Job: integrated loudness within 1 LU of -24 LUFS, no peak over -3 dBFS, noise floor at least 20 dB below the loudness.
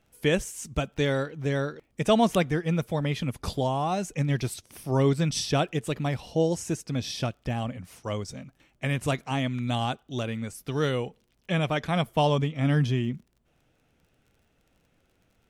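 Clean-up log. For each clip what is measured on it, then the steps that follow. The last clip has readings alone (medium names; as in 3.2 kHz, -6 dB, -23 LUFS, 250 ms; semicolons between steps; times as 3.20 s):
tick rate 30 per s; loudness -28.0 LUFS; peak level -9.5 dBFS; loudness target -24.0 LUFS
-> de-click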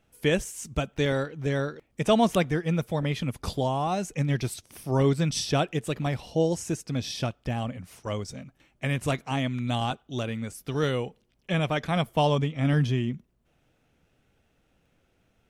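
tick rate 0.19 per s; loudness -28.0 LUFS; peak level -9.5 dBFS; loudness target -24.0 LUFS
-> trim +4 dB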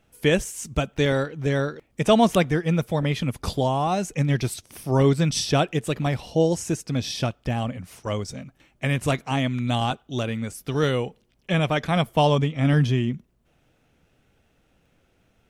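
loudness -24.0 LUFS; peak level -5.5 dBFS; noise floor -66 dBFS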